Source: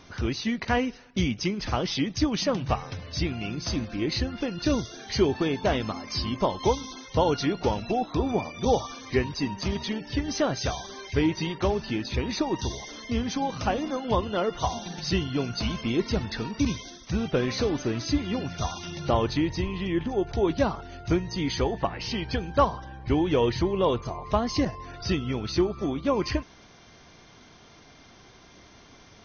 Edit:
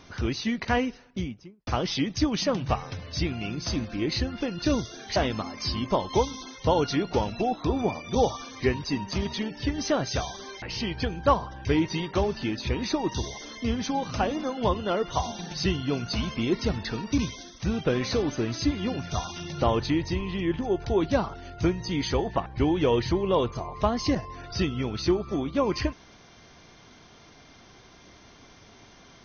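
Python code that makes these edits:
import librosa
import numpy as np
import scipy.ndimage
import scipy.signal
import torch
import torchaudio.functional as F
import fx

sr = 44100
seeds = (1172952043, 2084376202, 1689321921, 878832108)

y = fx.studio_fade_out(x, sr, start_s=0.8, length_s=0.87)
y = fx.edit(y, sr, fx.cut(start_s=5.16, length_s=0.5),
    fx.move(start_s=21.93, length_s=1.03, to_s=11.12), tone=tone)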